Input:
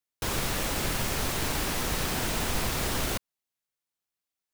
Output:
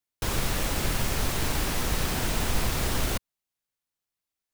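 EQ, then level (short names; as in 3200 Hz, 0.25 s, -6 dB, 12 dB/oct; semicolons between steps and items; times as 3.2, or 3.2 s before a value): low shelf 110 Hz +6.5 dB; 0.0 dB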